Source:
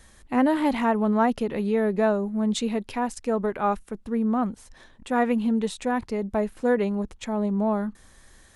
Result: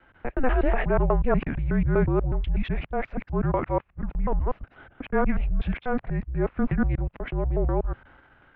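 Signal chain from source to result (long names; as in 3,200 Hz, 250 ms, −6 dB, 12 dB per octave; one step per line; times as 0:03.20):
reversed piece by piece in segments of 122 ms
transient designer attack −4 dB, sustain +5 dB
single-sideband voice off tune −260 Hz 150–2,800 Hz
level +1.5 dB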